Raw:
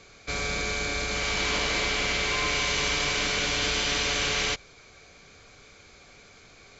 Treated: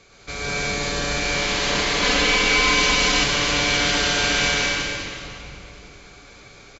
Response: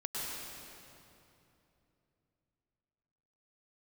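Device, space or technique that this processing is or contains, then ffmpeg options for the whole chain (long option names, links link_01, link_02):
cave: -filter_complex "[0:a]aecho=1:1:210:0.355[link_01];[1:a]atrim=start_sample=2205[link_02];[link_01][link_02]afir=irnorm=-1:irlink=0,asettb=1/sr,asplit=3[link_03][link_04][link_05];[link_03]atrim=end=2.024[link_06];[link_04]atrim=start=2.02:end=3.24,asetpts=PTS-STARTPTS,afade=type=in:duration=0.004:curve=qsin,afade=type=out:start_time=1.216:duration=0.004:curve=qsin,aecho=1:1:4:0.86,atrim=end_sample=53802[link_07];[link_05]atrim=start=3.236[link_08];[link_06][link_07]acrossfade=duration=0.004:curve1=hsin:curve2=qsin[link_09];[link_09][link_08]acrossfade=duration=0.004:curve1=qsin:curve2=hsin,volume=2.5dB"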